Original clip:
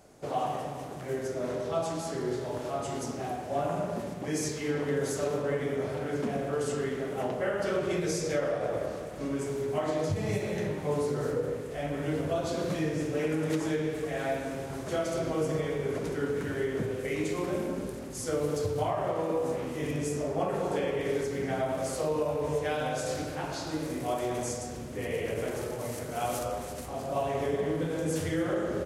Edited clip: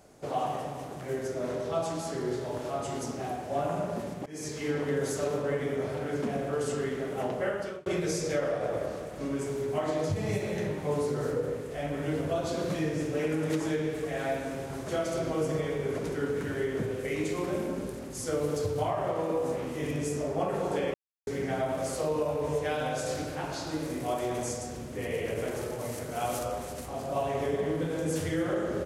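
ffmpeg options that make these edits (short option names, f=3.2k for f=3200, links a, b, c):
-filter_complex "[0:a]asplit=5[a][b][c][d][e];[a]atrim=end=4.26,asetpts=PTS-STARTPTS,afade=t=out:st=4.256:d=0.004:c=hsin:silence=0.0944061[f];[b]atrim=start=4.26:end=7.86,asetpts=PTS-STARTPTS,afade=t=in:d=0.37:silence=0.0944061,afade=t=out:st=3.22:d=0.38[g];[c]atrim=start=7.86:end=20.94,asetpts=PTS-STARTPTS,afade=t=in:d=0.004:c=hsin,afade=t=out:st=13.076:d=0.004:c=hsin[h];[d]atrim=start=20.94:end=21.27,asetpts=PTS-STARTPTS,volume=0[i];[e]atrim=start=21.27,asetpts=PTS-STARTPTS,afade=t=in:d=0.004:c=hsin[j];[f][g][h][i][j]concat=n=5:v=0:a=1"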